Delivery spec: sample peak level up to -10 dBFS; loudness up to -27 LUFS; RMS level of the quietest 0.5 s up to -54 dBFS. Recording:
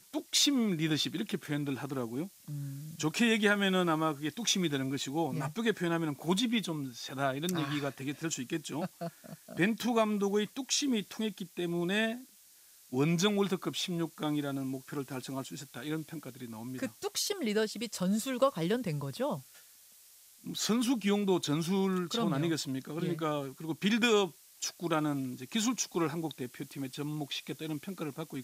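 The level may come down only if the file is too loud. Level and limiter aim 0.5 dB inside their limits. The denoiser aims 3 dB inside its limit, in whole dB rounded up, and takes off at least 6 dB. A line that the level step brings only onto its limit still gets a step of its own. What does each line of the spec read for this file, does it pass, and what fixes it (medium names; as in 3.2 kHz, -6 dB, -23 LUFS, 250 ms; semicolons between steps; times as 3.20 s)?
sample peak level -13.5 dBFS: pass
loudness -32.5 LUFS: pass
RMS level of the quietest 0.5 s -59 dBFS: pass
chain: none needed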